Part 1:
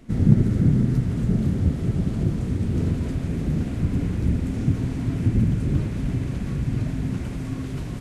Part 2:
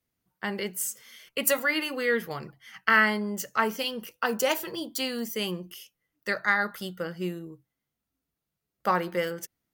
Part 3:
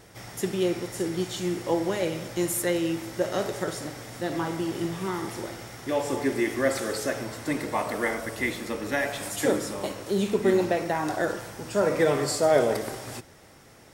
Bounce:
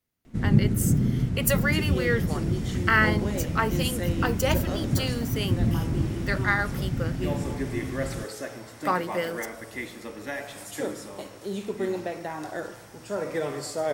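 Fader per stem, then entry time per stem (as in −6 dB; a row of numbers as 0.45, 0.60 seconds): −4.0, −0.5, −7.0 decibels; 0.25, 0.00, 1.35 seconds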